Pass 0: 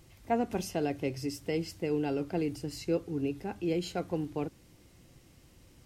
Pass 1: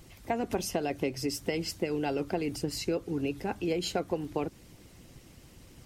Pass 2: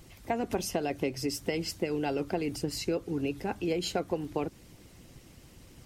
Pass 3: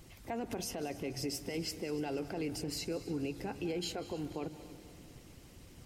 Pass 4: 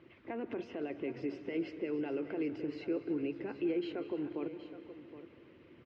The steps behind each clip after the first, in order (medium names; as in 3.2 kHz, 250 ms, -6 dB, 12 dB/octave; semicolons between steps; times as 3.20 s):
harmonic-percussive split percussive +9 dB; compression, threshold -26 dBFS, peak gain reduction 7 dB
no audible change
peak limiter -26.5 dBFS, peak gain reduction 10.5 dB; multi-head delay 96 ms, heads second and third, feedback 62%, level -18 dB; on a send at -16.5 dB: reverberation RT60 1.1 s, pre-delay 153 ms; on the sum: trim -2.5 dB
cabinet simulation 180–2700 Hz, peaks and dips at 180 Hz -7 dB, 340 Hz +7 dB, 780 Hz -9 dB; delay 770 ms -13 dB